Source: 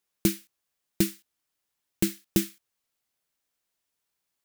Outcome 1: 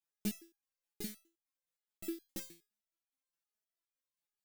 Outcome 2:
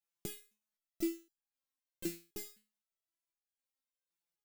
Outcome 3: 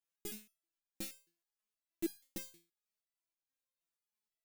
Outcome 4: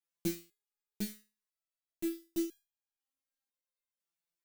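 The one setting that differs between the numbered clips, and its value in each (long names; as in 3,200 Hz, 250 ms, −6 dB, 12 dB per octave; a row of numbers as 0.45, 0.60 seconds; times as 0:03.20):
step-sequenced resonator, speed: 9.6, 3.9, 6.3, 2 Hertz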